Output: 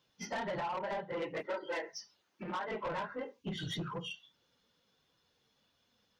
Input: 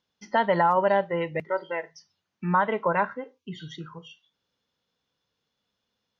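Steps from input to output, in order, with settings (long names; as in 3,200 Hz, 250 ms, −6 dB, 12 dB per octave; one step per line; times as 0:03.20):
random phases in long frames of 50 ms
downward compressor 16 to 1, threshold −34 dBFS, peak gain reduction 20 dB
soft clipping −38 dBFS, distortion −10 dB
0:01.13–0:02.68: low shelf with overshoot 210 Hz −10 dB, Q 1.5
level +5 dB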